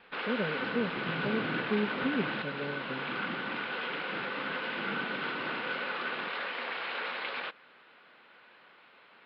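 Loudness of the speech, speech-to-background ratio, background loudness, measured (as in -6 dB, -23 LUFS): -36.5 LUFS, -2.0 dB, -34.5 LUFS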